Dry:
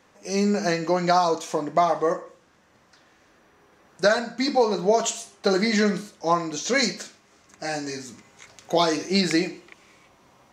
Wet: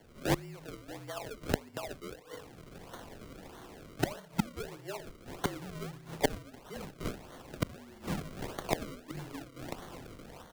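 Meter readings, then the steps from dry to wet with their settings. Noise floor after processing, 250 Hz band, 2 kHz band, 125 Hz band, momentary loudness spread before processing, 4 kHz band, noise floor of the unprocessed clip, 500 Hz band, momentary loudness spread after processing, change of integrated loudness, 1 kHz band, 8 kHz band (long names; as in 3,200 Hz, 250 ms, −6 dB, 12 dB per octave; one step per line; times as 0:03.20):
−55 dBFS, −13.0 dB, −14.5 dB, −6.5 dB, 11 LU, −15.5 dB, −59 dBFS, −16.5 dB, 15 LU, −16.0 dB, −17.0 dB, −15.0 dB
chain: automatic gain control gain up to 7 dB
repeating echo 62 ms, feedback 26%, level −11 dB
gate with flip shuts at −16 dBFS, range −29 dB
sample-and-hold swept by an LFO 34×, swing 100% 1.6 Hz
frequency shifter −46 Hz
level +2 dB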